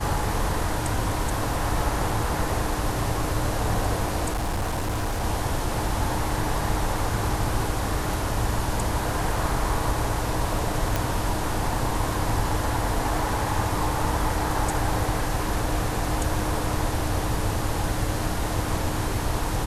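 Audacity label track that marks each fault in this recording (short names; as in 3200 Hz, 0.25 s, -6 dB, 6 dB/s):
4.310000	5.240000	clipped -22.5 dBFS
10.960000	10.960000	pop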